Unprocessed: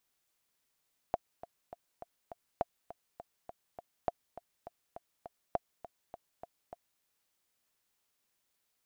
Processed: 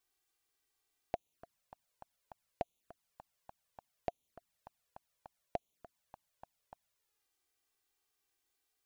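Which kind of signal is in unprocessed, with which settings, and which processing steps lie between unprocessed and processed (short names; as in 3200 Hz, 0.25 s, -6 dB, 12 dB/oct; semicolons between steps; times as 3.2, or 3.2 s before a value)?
metronome 204 bpm, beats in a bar 5, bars 4, 693 Hz, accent 15.5 dB -16.5 dBFS
dynamic EQ 1200 Hz, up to -4 dB, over -56 dBFS, Q 1.2; envelope flanger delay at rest 2.7 ms, full sweep at -44 dBFS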